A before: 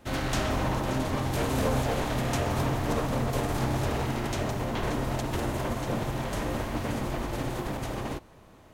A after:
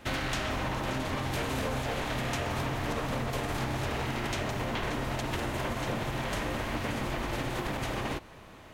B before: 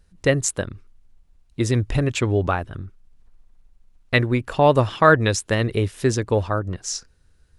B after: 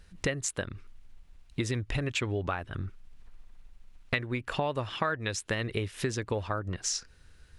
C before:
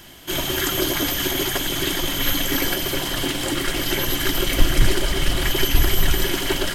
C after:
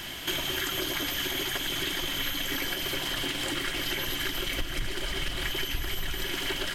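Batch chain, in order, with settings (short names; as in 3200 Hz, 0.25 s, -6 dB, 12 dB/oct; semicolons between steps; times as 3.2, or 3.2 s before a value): bell 2400 Hz +7 dB 2.1 oct; compressor 6:1, threshold -31 dBFS; gain +2 dB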